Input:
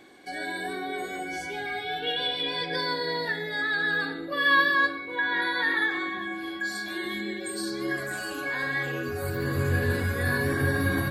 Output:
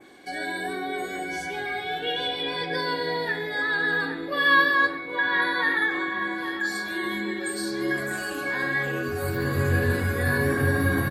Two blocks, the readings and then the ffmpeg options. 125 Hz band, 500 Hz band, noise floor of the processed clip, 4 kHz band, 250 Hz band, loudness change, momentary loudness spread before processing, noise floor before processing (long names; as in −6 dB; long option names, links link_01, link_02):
+2.5 dB, +3.0 dB, −34 dBFS, −0.5 dB, +3.0 dB, +2.0 dB, 9 LU, −36 dBFS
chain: -filter_complex "[0:a]adynamicequalizer=threshold=0.00794:dfrequency=4200:dqfactor=1:tfrequency=4200:tqfactor=1:attack=5:release=100:ratio=0.375:range=2.5:mode=cutabove:tftype=bell,asplit=2[link_01][link_02];[link_02]adelay=824,lowpass=frequency=3800:poles=1,volume=-11.5dB,asplit=2[link_03][link_04];[link_04]adelay=824,lowpass=frequency=3800:poles=1,volume=0.52,asplit=2[link_05][link_06];[link_06]adelay=824,lowpass=frequency=3800:poles=1,volume=0.52,asplit=2[link_07][link_08];[link_08]adelay=824,lowpass=frequency=3800:poles=1,volume=0.52,asplit=2[link_09][link_10];[link_10]adelay=824,lowpass=frequency=3800:poles=1,volume=0.52,asplit=2[link_11][link_12];[link_12]adelay=824,lowpass=frequency=3800:poles=1,volume=0.52[link_13];[link_03][link_05][link_07][link_09][link_11][link_13]amix=inputs=6:normalize=0[link_14];[link_01][link_14]amix=inputs=2:normalize=0,volume=2.5dB"